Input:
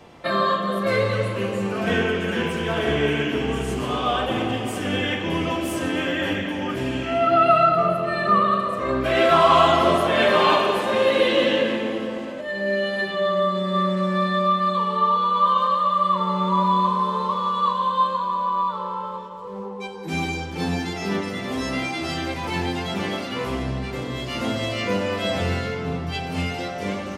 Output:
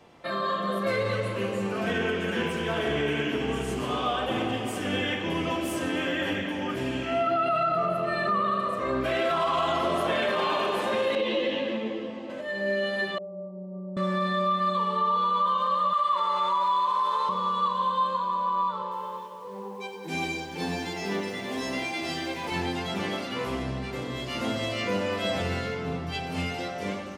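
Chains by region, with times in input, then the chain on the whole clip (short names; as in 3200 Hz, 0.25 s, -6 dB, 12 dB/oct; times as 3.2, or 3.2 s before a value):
11.15–12.3 LPF 5000 Hz + bell 1500 Hz -7.5 dB 0.52 oct + ensemble effect
13.18–13.97 steep low-pass 860 Hz 48 dB/oct + resonator 180 Hz, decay 0.53 s, mix 80%
15.93–17.29 HPF 740 Hz + fast leveller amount 50%
18.82–22.52 HPF 170 Hz 6 dB/oct + notch 1300 Hz, Q 7.9 + lo-fi delay 94 ms, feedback 35%, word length 8-bit, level -10 dB
whole clip: limiter -14 dBFS; AGC gain up to 3.5 dB; low shelf 110 Hz -5 dB; gain -7 dB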